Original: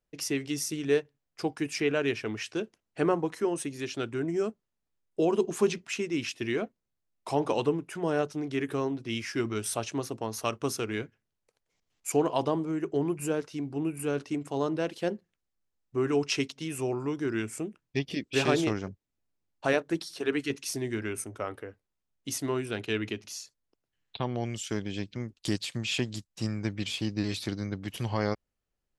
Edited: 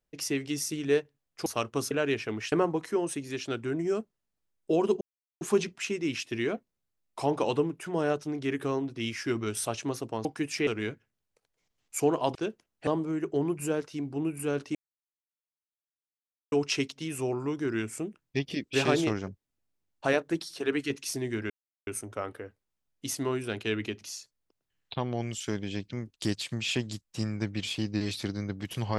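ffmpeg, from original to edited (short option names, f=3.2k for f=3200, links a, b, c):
-filter_complex "[0:a]asplit=12[a][b][c][d][e][f][g][h][i][j][k][l];[a]atrim=end=1.462[m];[b]atrim=start=10.338:end=10.792[n];[c]atrim=start=1.878:end=2.492[o];[d]atrim=start=3.008:end=5.5,asetpts=PTS-STARTPTS,afade=t=out:st=2.488:d=0.004:c=hsin,apad=pad_dur=0.4[p];[e]atrim=start=5.5:end=10.342,asetpts=PTS-STARTPTS,afade=t=in:d=0.004:c=hsin[q];[f]atrim=start=1.458:end=1.882[r];[g]atrim=start=10.788:end=12.472[s];[h]atrim=start=2.488:end=3.012[t];[i]atrim=start=12.468:end=14.35,asetpts=PTS-STARTPTS,afade=t=out:st=1.878:d=0.004:c=hsin[u];[j]atrim=start=14.35:end=16.12,asetpts=PTS-STARTPTS,volume=0[v];[k]atrim=start=16.12:end=21.1,asetpts=PTS-STARTPTS,afade=t=in:d=0.004:c=hsin,afade=t=out:st=4.976:d=0.004:c=hsin,apad=pad_dur=0.37[w];[l]atrim=start=21.1,asetpts=PTS-STARTPTS,afade=t=in:d=0.004:c=hsin[x];[m][n]acrossfade=d=0.004:c1=hsin:c2=hsin[y];[y][o]acrossfade=d=0.004:c1=hsin:c2=hsin[z];[p][q]concat=n=2:v=0:a=1[aa];[z][aa]acrossfade=d=0.004:c1=hsin:c2=hsin[ab];[ab][r]acrossfade=d=0.004:c1=hsin:c2=hsin[ac];[ac][s]acrossfade=d=0.004:c1=hsin:c2=hsin[ad];[ad][t]acrossfade=d=0.004:c1=hsin:c2=hsin[ae];[u][v][w][x]concat=n=4:v=0:a=1[af];[ae][af]acrossfade=d=0.004:c1=hsin:c2=hsin"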